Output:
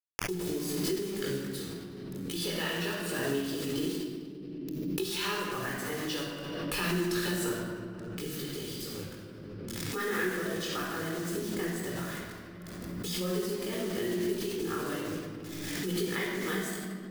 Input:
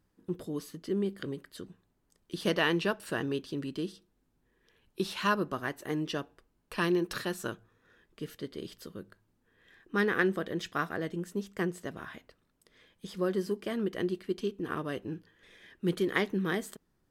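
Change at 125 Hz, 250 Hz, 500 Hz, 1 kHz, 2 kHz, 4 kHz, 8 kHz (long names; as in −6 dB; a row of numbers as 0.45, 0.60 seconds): +1.5, 0.0, −0.5, −2.0, −1.0, +4.0, +10.5 decibels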